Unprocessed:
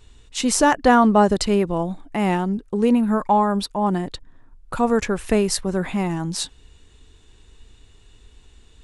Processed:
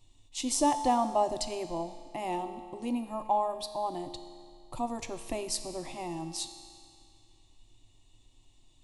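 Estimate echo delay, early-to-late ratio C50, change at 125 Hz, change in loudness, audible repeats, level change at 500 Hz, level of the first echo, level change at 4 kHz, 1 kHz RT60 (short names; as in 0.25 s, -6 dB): none, 10.0 dB, -21.0 dB, -12.5 dB, none, -12.5 dB, none, -9.5 dB, 2.2 s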